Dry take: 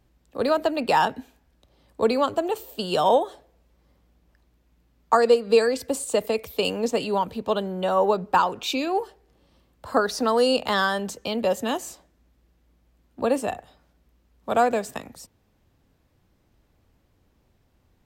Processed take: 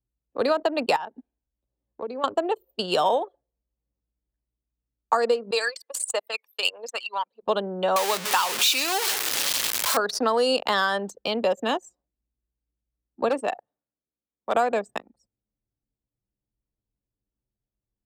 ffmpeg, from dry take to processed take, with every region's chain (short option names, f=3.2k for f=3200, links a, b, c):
-filter_complex "[0:a]asettb=1/sr,asplit=3[a][b][c];[a]atrim=end=0.964[d];[b]atrim=start=0.96:end=2.24,asetpts=PTS-STARTPTS,afade=t=in:d=0.004:c=qsin,afade=t=out:st=1.276:d=0.004:c=qsin,acrusher=bits=6:mode=log:mix=0:aa=0.000001,acompressor=threshold=-35dB:ratio=2.5:attack=3.2:release=140:knee=1:detection=peak[e];[c]atrim=start=2.236[f];[d][e]acrossfade=d=0.004:c1=hsin:c2=qsin[g];[g][f]acrossfade=d=0.004:c1=qsin:c2=hsin,asettb=1/sr,asplit=3[h][i][j];[h]atrim=end=5.514[k];[i]atrim=start=5.51:end=7.43,asetpts=PTS-STARTPTS,afade=t=in:d=0.004:c=qsin,afade=t=out:st=1.916:d=0.004:c=qsin,highpass=1k,aphaser=in_gain=1:out_gain=1:delay=1.1:decay=0.43:speed=1.6:type=triangular[l];[j]atrim=start=7.426[m];[k][l]acrossfade=d=0.004:c1=hsin:c2=qsin[n];[n][m]acrossfade=d=0.004:c1=qsin:c2=hsin,asettb=1/sr,asplit=3[o][p][q];[o]atrim=end=7.964[r];[p]atrim=start=7.96:end=9.97,asetpts=PTS-STARTPTS,afade=t=in:d=0.004:c=qsin,afade=t=out:st=2.006:d=0.004:c=qsin,aeval=exprs='val(0)+0.5*0.0708*sgn(val(0))':c=same,highpass=59,tiltshelf=f=1.3k:g=-10[s];[q]atrim=start=9.966[t];[r][s]acrossfade=d=0.004:c1=hsin:c2=qsin[u];[u][t]acrossfade=d=0.004:c1=qsin:c2=hsin,asettb=1/sr,asplit=3[v][w][x];[v]atrim=end=13.294[y];[w]atrim=start=13.29:end=14.55,asetpts=PTS-STARTPTS,afade=t=in:d=0.004:c=qsin,afade=t=out:st=1.256:d=0.004:c=qsin,highpass=170,lowshelf=f=400:g=-3,aeval=exprs='0.141*(abs(mod(val(0)/0.141+3,4)-2)-1)':c=same[z];[x]atrim=start=14.546[aa];[y][z]acrossfade=d=0.004:c1=hsin:c2=qsin[ab];[ab][aa]acrossfade=d=0.004:c1=qsin:c2=hsin,anlmdn=25.1,highpass=f=400:p=1,acompressor=threshold=-22dB:ratio=6,volume=4dB"